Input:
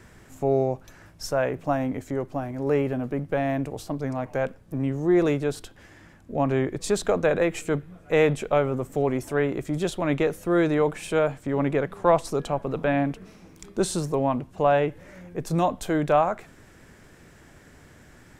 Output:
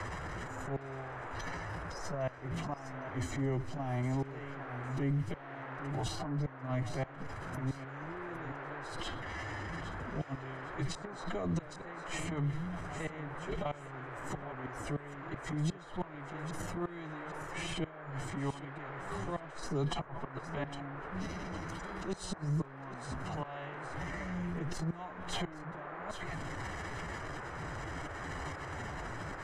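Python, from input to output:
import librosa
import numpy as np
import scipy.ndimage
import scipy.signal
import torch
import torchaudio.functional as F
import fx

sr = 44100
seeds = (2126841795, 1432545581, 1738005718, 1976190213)

p1 = scipy.signal.sosfilt(scipy.signal.butter(2, 7000.0, 'lowpass', fs=sr, output='sos'), x)
p2 = fx.peak_eq(p1, sr, hz=230.0, db=-7.0, octaves=0.47)
p3 = p2 + 0.8 * np.pad(p2, (int(1.0 * sr / 1000.0), 0))[:len(p2)]
p4 = fx.dynamic_eq(p3, sr, hz=520.0, q=3.1, threshold_db=-42.0, ratio=4.0, max_db=3)
p5 = fx.rotary(p4, sr, hz=1.0)
p6 = fx.auto_swell(p5, sr, attack_ms=109.0)
p7 = fx.stretch_vocoder(p6, sr, factor=1.6)
p8 = fx.gate_flip(p7, sr, shuts_db=-22.0, range_db=-35)
p9 = fx.transient(p8, sr, attack_db=-9, sustain_db=8)
p10 = fx.dmg_noise_band(p9, sr, seeds[0], low_hz=310.0, high_hz=1700.0, level_db=-55.0)
p11 = p10 + fx.echo_feedback(p10, sr, ms=808, feedback_pct=22, wet_db=-17.5, dry=0)
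p12 = fx.band_squash(p11, sr, depth_pct=70)
y = F.gain(torch.from_numpy(p12), 3.5).numpy()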